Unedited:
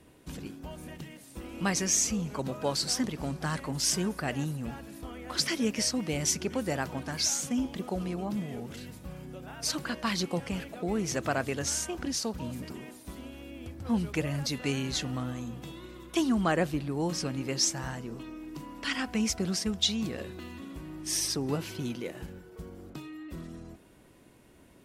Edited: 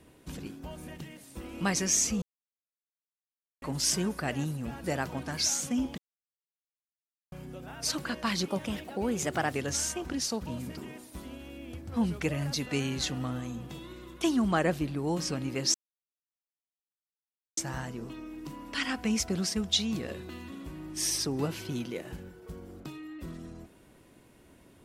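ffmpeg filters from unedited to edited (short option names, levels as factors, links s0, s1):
-filter_complex "[0:a]asplit=9[s0][s1][s2][s3][s4][s5][s6][s7][s8];[s0]atrim=end=2.22,asetpts=PTS-STARTPTS,afade=t=out:st=2.216:d=0.004:c=hsin[s9];[s1]atrim=start=2.22:end=3.62,asetpts=PTS-STARTPTS,volume=0[s10];[s2]atrim=start=3.62:end=4.842,asetpts=PTS-STARTPTS,afade=t=in:d=0.004:c=hsin[s11];[s3]atrim=start=6.638:end=7.78,asetpts=PTS-STARTPTS,afade=t=out:st=1.138:d=0.004:c=hsin[s12];[s4]atrim=start=7.78:end=9.12,asetpts=PTS-STARTPTS,volume=0[s13];[s5]atrim=start=9.12:end=10.284,asetpts=PTS-STARTPTS,afade=t=in:d=0.004:c=hsin[s14];[s6]atrim=start=10.28:end=11.47,asetpts=PTS-STARTPTS,asetrate=49392,aresample=44100,atrim=end_sample=46856,asetpts=PTS-STARTPTS[s15];[s7]atrim=start=11.466:end=17.67,asetpts=PTS-STARTPTS,afade=t=out:st=6.2:d=0.004:c=hsin,apad=pad_dur=1.83[s16];[s8]atrim=start=17.67,asetpts=PTS-STARTPTS,afade=t=in:d=0.004:c=hsin[s17];[s9][s10][s11]concat=n=3:v=0:a=1[s18];[s12][s13][s14]concat=n=3:v=0:a=1[s19];[s18][s19]acrossfade=d=0.004:c1=hsin:c2=hsin[s20];[s20][s15]acrossfade=d=0.004:c1=hsin:c2=hsin[s21];[s16][s17]concat=n=2:v=0:a=1[s22];[s21][s22]acrossfade=d=0.004:c1=hsin:c2=hsin"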